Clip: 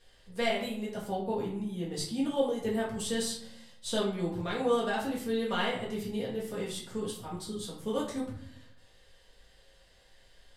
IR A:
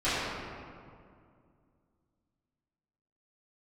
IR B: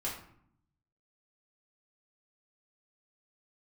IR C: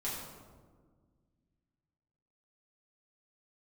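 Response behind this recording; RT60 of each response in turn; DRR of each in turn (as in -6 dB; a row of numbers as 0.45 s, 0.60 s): B; 2.3 s, 0.65 s, 1.6 s; -16.5 dB, -6.5 dB, -8.0 dB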